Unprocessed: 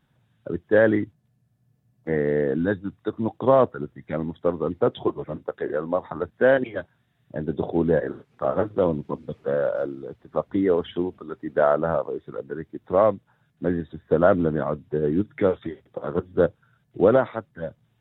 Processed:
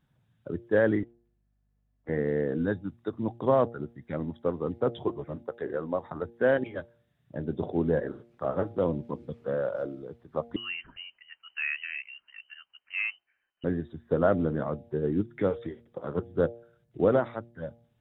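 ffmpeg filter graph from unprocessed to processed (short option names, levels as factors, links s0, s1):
-filter_complex "[0:a]asettb=1/sr,asplit=3[s0][s1][s2];[s0]atrim=end=1.034[s3];[s1]atrim=start=1.03:end=2.09,asetpts=PTS-STARTPTS,afade=t=in:d=0.004:c=qsin,afade=t=out:st=1.056:d=0.004:c=qsin,highpass=200,lowpass=2400,lowshelf=f=460:g=-10.5,aeval=exprs='val(0)+0.000316*(sin(2*PI*50*n/s)+sin(2*PI*2*50*n/s)/2+sin(2*PI*3*50*n/s)/3+sin(2*PI*4*50*n/s)/4+sin(2*PI*5*50*n/s)/5)':c=same[s4];[s2]atrim=start=2.086[s5];[s3][s4]acrossfade=d=0.004:c1=hsin:c2=qsin[s6];[s6][s5]acrossfade=d=0.004:c1=qsin:c2=hsin,asettb=1/sr,asplit=3[s7][s8][s9];[s7]atrim=end=10.564[s10];[s8]atrim=start=10.56:end=13.64,asetpts=PTS-STARTPTS,afade=t=in:d=0.004:c=qsin,afade=t=out:st=3.076:d=0.004:c=qsin,highpass=f=1300:p=1,lowpass=f=2700:t=q:w=0.5098,lowpass=f=2700:t=q:w=0.6013,lowpass=f=2700:t=q:w=0.9,lowpass=f=2700:t=q:w=2.563,afreqshift=-3200[s11];[s9]atrim=start=13.636[s12];[s10][s11]acrossfade=d=0.004:c1=hsin:c2=qsin[s13];[s13][s12]acrossfade=d=0.004:c1=qsin:c2=hsin,lowshelf=f=180:g=5.5,bandreject=f=117.2:t=h:w=4,bandreject=f=234.4:t=h:w=4,bandreject=f=351.6:t=h:w=4,bandreject=f=468.8:t=h:w=4,bandreject=f=586:t=h:w=4,bandreject=f=703.2:t=h:w=4,bandreject=f=820.4:t=h:w=4,volume=0.473"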